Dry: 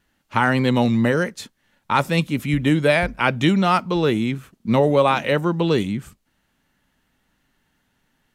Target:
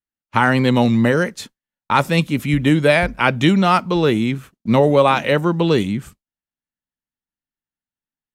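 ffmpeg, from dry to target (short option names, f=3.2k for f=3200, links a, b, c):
-af "agate=range=-33dB:threshold=-35dB:ratio=3:detection=peak,volume=3dB"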